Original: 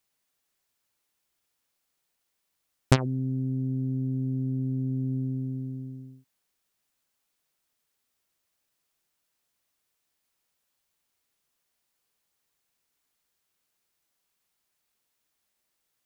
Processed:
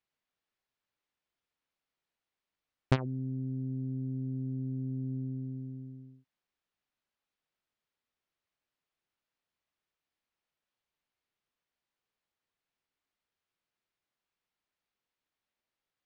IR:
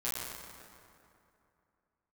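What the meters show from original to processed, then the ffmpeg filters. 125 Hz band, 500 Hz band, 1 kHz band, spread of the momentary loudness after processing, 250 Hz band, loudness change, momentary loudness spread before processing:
-6.5 dB, -6.5 dB, -6.5 dB, 11 LU, -6.5 dB, -6.5 dB, 11 LU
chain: -af "lowpass=3.6k,volume=-6.5dB"

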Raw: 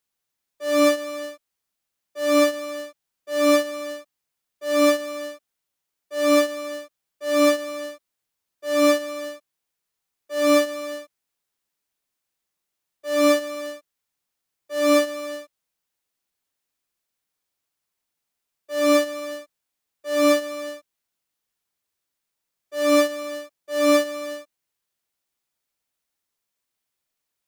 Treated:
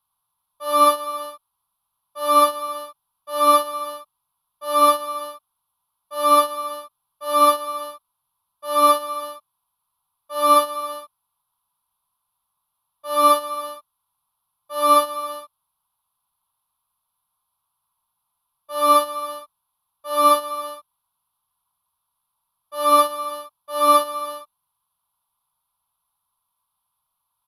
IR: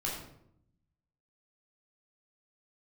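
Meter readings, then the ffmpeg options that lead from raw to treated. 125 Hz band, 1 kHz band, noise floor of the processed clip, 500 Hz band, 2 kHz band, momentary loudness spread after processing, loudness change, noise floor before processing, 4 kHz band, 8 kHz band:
n/a, +13.0 dB, -78 dBFS, -3.0 dB, -7.0 dB, 19 LU, +2.5 dB, -82 dBFS, +1.0 dB, +1.5 dB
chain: -af "firequalizer=gain_entry='entry(150,0);entry(350,-22);entry(1000,14);entry(1800,-17);entry(3400,-2);entry(7700,-24);entry(11000,9);entry(16000,-17)':delay=0.05:min_phase=1,volume=6dB"

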